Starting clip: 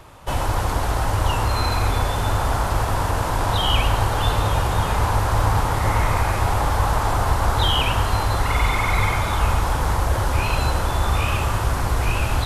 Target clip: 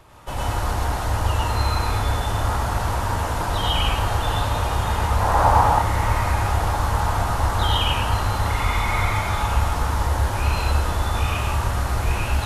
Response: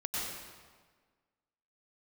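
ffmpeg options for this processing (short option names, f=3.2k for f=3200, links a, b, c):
-filter_complex "[0:a]asettb=1/sr,asplit=3[a][b][c];[a]atrim=end=5.204[d];[b]atrim=start=5.2:end=5.69,asetpts=PTS-STARTPTS,afade=t=in:d=0.004:c=qsin,afade=t=out:st=0.486:d=0.004:c=qsin,equalizer=f=770:w=0.89:g=11[e];[c]atrim=start=5.686[f];[d][e]acrossfade=d=0.004:c1=hsin:c2=qsin[g];[g][f]acrossfade=d=0.004:c1=qsin:c2=hsin[h];[1:a]atrim=start_sample=2205,atrim=end_sample=6174[i];[h][i]afir=irnorm=-1:irlink=0,volume=-3.5dB"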